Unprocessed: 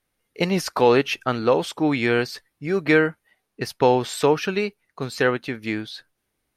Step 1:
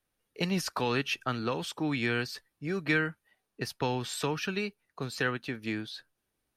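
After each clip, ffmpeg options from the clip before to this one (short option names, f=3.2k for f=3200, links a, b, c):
-filter_complex "[0:a]bandreject=f=2.1k:w=13,acrossover=split=260|1100|4800[a][b][c][d];[b]acompressor=threshold=-31dB:ratio=6[e];[a][e][c][d]amix=inputs=4:normalize=0,volume=-5.5dB"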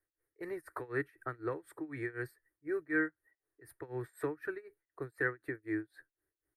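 -af "firequalizer=gain_entry='entry(130,0);entry(200,-27);entry(310,8);entry(540,-1);entry(830,-6);entry(1900,6);entry(2800,-27);entry(4100,-20);entry(6000,-26);entry(8900,0)':delay=0.05:min_phase=1,tremolo=f=4:d=0.93,volume=-4.5dB"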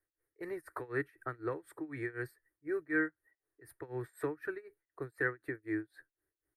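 -af anull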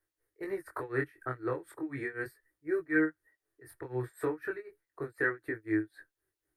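-af "flanger=delay=18.5:depth=5.2:speed=0.36,volume=6.5dB"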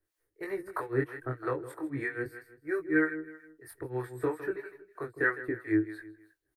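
-filter_complex "[0:a]aecho=1:1:159|318|477:0.211|0.0761|0.0274,acrossover=split=530[a][b];[a]aeval=exprs='val(0)*(1-0.7/2+0.7/2*cos(2*PI*3.1*n/s))':c=same[c];[b]aeval=exprs='val(0)*(1-0.7/2-0.7/2*cos(2*PI*3.1*n/s))':c=same[d];[c][d]amix=inputs=2:normalize=0,volume=5.5dB"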